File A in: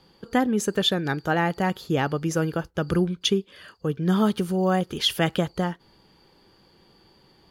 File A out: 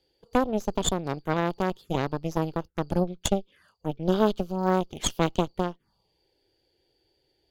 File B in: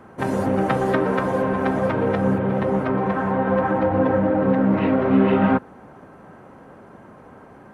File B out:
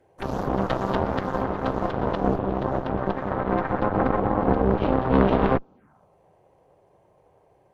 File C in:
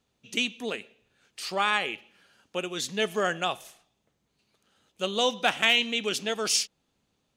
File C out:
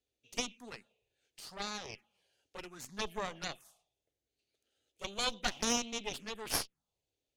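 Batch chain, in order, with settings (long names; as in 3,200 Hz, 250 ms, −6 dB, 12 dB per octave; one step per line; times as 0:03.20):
phaser swept by the level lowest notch 180 Hz, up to 1,800 Hz, full sweep at −23 dBFS
harmonic generator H 3 −13 dB, 4 −8 dB, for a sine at −7 dBFS
level −1.5 dB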